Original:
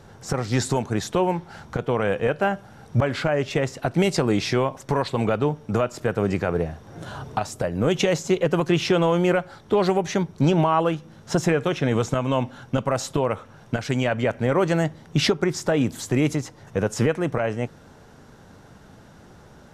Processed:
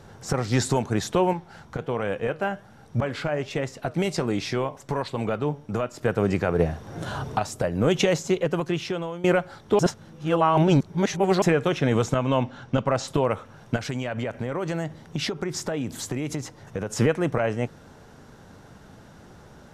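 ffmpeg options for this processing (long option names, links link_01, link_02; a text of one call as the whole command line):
ffmpeg -i in.wav -filter_complex "[0:a]asettb=1/sr,asplit=3[link_01][link_02][link_03];[link_01]atrim=end=1.334[link_04];[link_02]atrim=start=1.33:end=6.03,asetpts=PTS-STARTPTS,afade=type=in:duration=0.004:curve=qsin,afade=type=out:start_time=4.696:duration=0.004:curve=qsin,flanger=delay=3.4:depth=3.7:regen=87:speed=1.3:shape=sinusoidal[link_05];[link_03]atrim=start=6.026[link_06];[link_04][link_05]acrossfade=duration=0.004:curve1=hsin:curve2=qsin[link_07];[link_07][link_06]acrossfade=duration=0.004:curve1=qsin:curve2=hsin,asettb=1/sr,asplit=3[link_08][link_09][link_10];[link_08]atrim=end=12.144[link_11];[link_09]atrim=start=12.14:end=13.08,asetpts=PTS-STARTPTS,afade=type=in:duration=0.004:curve=qsin,afade=type=out:start_time=0.936:duration=0.004:curve=qsin,lowpass=5900[link_12];[link_10]atrim=start=13.076[link_13];[link_11][link_12]acrossfade=duration=0.004:curve1=hsin:curve2=qsin[link_14];[link_14][link_13]acrossfade=duration=0.004:curve1=qsin:curve2=hsin,asplit=3[link_15][link_16][link_17];[link_15]afade=type=out:start_time=13.77:duration=0.02[link_18];[link_16]acompressor=threshold=-24dB:ratio=6:attack=3.2:release=140:knee=1:detection=peak,afade=type=in:start_time=13.77:duration=0.02,afade=type=out:start_time=16.91:duration=0.02[link_19];[link_17]afade=type=in:start_time=16.91:duration=0.02[link_20];[link_18][link_19][link_20]amix=inputs=3:normalize=0,asplit=6[link_21][link_22][link_23][link_24][link_25][link_26];[link_21]atrim=end=6.592[link_27];[link_22]atrim=start=6.588:end=7.372,asetpts=PTS-STARTPTS,volume=4dB[link_28];[link_23]atrim=start=7.368:end=9.24,asetpts=PTS-STARTPTS,afade=type=out:start_time=0.652:duration=1.22:silence=0.133352[link_29];[link_24]atrim=start=9.24:end=9.792,asetpts=PTS-STARTPTS,afade=type=in:duration=0.004:curve=hsin:silence=0.133352[link_30];[link_25]atrim=start=9.788:end=11.422,asetpts=PTS-STARTPTS,areverse[link_31];[link_26]atrim=start=11.418[link_32];[link_27][link_28]acrossfade=duration=0.004:curve1=hsin:curve2=hsin[link_33];[link_29][link_30]concat=n=2:v=0:a=1[link_34];[link_33][link_34]acrossfade=duration=0.004:curve1=hsin:curve2=hsin[link_35];[link_35][link_31]acrossfade=duration=0.004:curve1=hsin:curve2=hsin[link_36];[link_36][link_32]acrossfade=duration=0.004:curve1=hsin:curve2=hsin" out.wav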